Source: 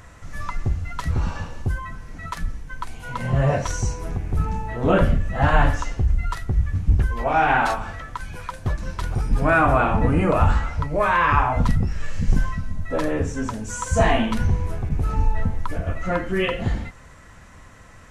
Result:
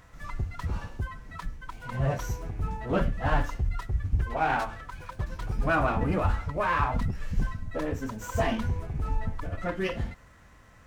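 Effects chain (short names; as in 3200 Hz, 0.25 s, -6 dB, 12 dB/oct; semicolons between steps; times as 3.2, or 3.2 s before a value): time stretch by phase-locked vocoder 0.6×; running maximum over 3 samples; gain -6.5 dB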